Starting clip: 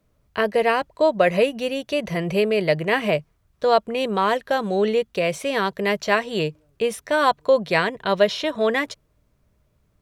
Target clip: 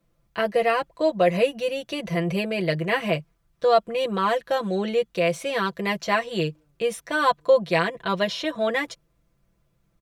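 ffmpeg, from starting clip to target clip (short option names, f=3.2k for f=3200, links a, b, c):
-af "aecho=1:1:5.9:0.83,volume=-4.5dB"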